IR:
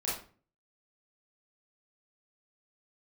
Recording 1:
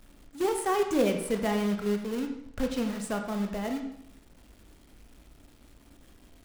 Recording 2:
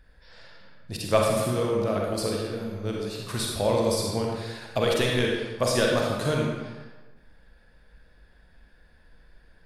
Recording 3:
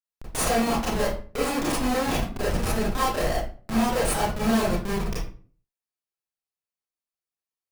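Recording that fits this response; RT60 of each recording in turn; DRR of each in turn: 3; 0.70, 1.3, 0.40 seconds; 4.5, −1.5, −7.5 decibels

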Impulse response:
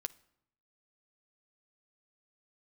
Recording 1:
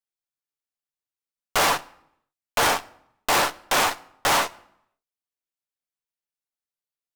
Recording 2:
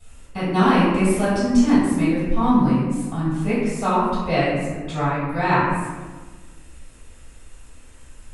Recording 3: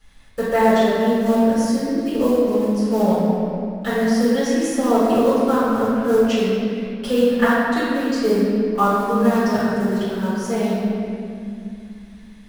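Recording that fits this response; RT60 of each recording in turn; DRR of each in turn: 1; non-exponential decay, 1.4 s, 2.5 s; 9.0, −13.0, −11.0 decibels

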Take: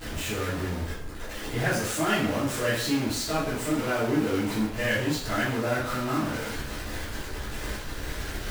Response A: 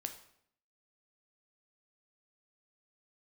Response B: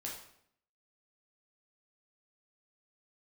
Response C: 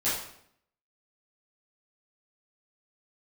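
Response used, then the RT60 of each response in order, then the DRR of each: C; 0.65, 0.65, 0.65 seconds; 6.0, −3.5, −12.5 decibels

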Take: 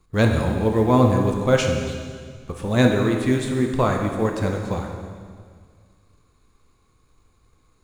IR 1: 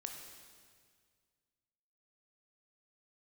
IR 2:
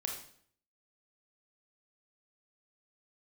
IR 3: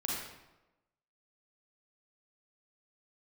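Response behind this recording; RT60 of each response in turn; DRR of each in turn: 1; 1.9, 0.60, 1.0 seconds; 2.5, 0.5, −4.5 decibels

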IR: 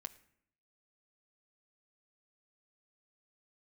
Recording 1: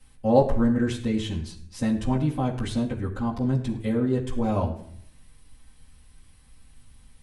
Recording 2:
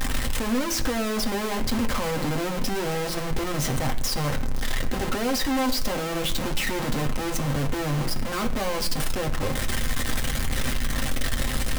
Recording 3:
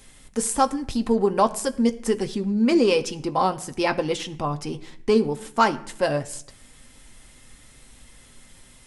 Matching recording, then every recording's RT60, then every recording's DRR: 3; non-exponential decay, non-exponential decay, non-exponential decay; −7.5, 2.0, 7.0 decibels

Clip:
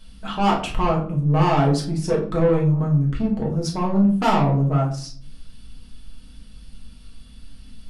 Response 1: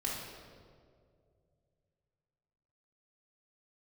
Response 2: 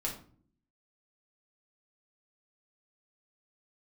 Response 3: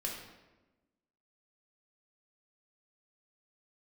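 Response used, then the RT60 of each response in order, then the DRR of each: 2; 2.2, 0.50, 1.1 seconds; −5.5, −3.0, −2.5 decibels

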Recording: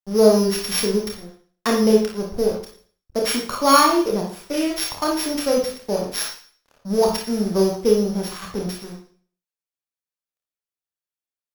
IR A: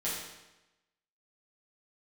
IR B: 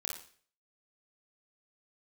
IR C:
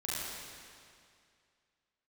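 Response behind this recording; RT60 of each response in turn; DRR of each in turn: B; 1.0, 0.45, 2.3 seconds; −9.5, −1.0, −8.5 decibels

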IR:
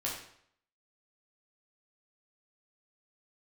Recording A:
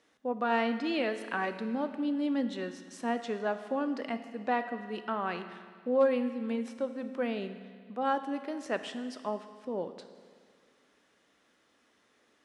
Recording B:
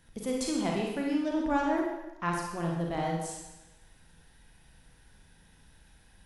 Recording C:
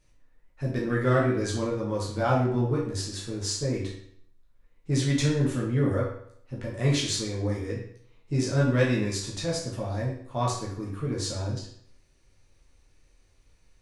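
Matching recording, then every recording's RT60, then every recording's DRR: C; 1.9, 1.0, 0.65 seconds; 9.0, −1.5, −5.0 decibels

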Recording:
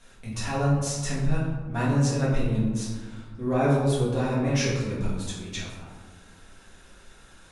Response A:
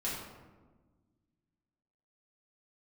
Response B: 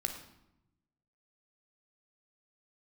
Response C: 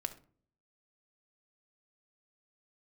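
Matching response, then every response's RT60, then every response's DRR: A; 1.3, 0.85, 0.45 seconds; −8.0, 4.5, 6.5 decibels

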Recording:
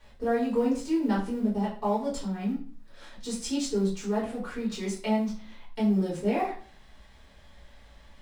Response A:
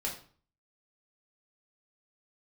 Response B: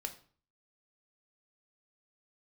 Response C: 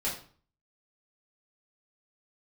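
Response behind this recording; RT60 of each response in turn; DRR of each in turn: C; 0.45, 0.45, 0.45 seconds; −3.0, 5.5, −7.5 decibels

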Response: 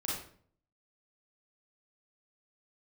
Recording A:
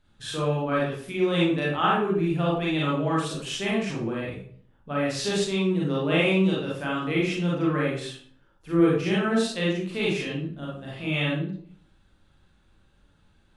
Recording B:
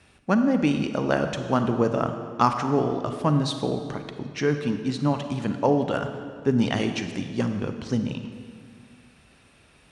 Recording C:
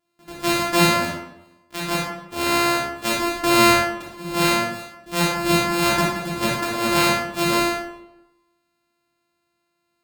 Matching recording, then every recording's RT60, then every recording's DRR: A; 0.55, 1.9, 0.95 seconds; −6.0, 7.0, −5.0 decibels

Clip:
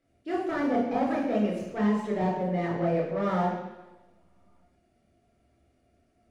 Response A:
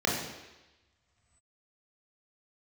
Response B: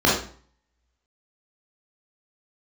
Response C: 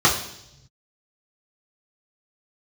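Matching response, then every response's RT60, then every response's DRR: A; 1.1, 0.45, 0.80 seconds; −3.5, −6.0, −6.0 decibels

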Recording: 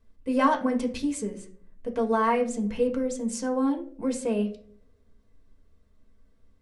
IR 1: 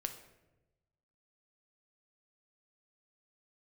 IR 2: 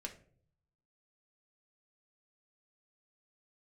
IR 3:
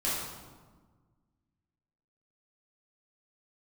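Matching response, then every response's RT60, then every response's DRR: 2; 1.0, 0.55, 1.4 seconds; 6.0, 1.0, −9.0 decibels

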